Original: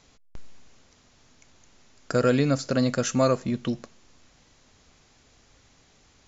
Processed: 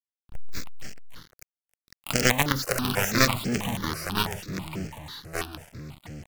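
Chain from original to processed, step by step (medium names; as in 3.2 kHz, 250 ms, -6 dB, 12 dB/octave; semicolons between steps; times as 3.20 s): in parallel at -3 dB: compression 10:1, threshold -36 dBFS, peak gain reduction 19 dB; on the sum: companded quantiser 2-bit; ever faster or slower copies 132 ms, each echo -4 st, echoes 2, each echo -6 dB; harmony voices +12 st -8 dB; stepped phaser 6.1 Hz 930–3700 Hz; trim -1 dB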